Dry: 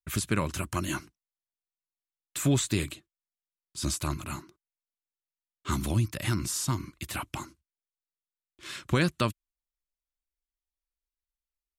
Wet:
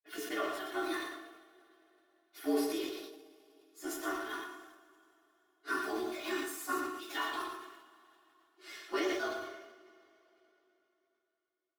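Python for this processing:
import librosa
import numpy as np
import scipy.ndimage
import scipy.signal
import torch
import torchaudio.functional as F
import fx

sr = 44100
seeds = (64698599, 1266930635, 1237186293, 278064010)

p1 = fx.partial_stretch(x, sr, pct=112)
p2 = scipy.signal.sosfilt(scipy.signal.bessel(6, 630.0, 'highpass', norm='mag', fs=sr, output='sos'), p1)
p3 = fx.tilt_eq(p2, sr, slope=-4.0)
p4 = p3 + 0.88 * np.pad(p3, (int(2.8 * sr / 1000.0), 0))[:len(p3)]
p5 = p4 + fx.echo_single(p4, sr, ms=115, db=-6.5, dry=0)
p6 = fx.rider(p5, sr, range_db=4, speed_s=0.5)
p7 = np.where(np.abs(p6) >= 10.0 ** (-38.5 / 20.0), p6, 0.0)
p8 = p6 + (p7 * 10.0 ** (-9.5 / 20.0))
p9 = fx.rev_double_slope(p8, sr, seeds[0], early_s=0.43, late_s=3.5, knee_db=-22, drr_db=1.0)
p10 = fx.sustainer(p9, sr, db_per_s=50.0)
y = p10 * 10.0 ** (-4.0 / 20.0)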